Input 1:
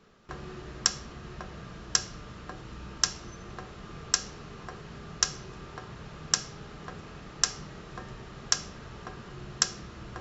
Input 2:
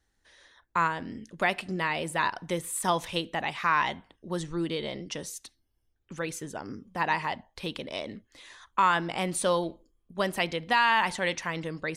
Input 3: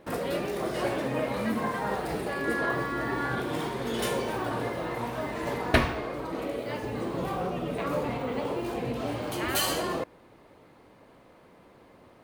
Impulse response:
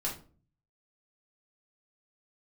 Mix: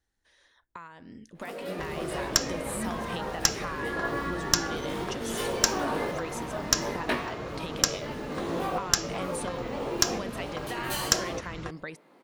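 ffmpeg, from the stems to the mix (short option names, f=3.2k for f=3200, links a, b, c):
-filter_complex "[0:a]aeval=exprs='(tanh(3.16*val(0)+0.55)-tanh(0.55))/3.16':c=same,adelay=1500,volume=-2.5dB[a];[1:a]acompressor=threshold=-36dB:ratio=8,volume=-6.5dB,asplit=2[b][c];[2:a]highpass=f=180:w=0.5412,highpass=f=180:w=1.3066,flanger=delay=17.5:depth=2.1:speed=1.8,adelay=1350,volume=-2dB[d];[c]apad=whole_len=599151[e];[d][e]sidechaincompress=threshold=-47dB:ratio=4:attack=7.3:release=1050[f];[a][b][f]amix=inputs=3:normalize=0,dynaudnorm=f=420:g=7:m=9.5dB"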